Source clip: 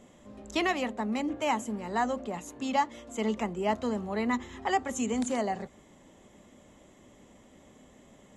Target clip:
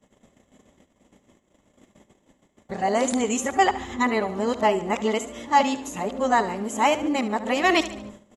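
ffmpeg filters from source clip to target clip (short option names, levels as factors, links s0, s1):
-filter_complex "[0:a]areverse,agate=range=0.0562:threshold=0.00224:ratio=16:detection=peak,aecho=1:1:72|144|216|288:0.2|0.0918|0.0422|0.0194,acrossover=split=260[s0][s1];[s0]acompressor=threshold=0.00562:ratio=6[s2];[s2][s1]amix=inputs=2:normalize=0,volume=2.66"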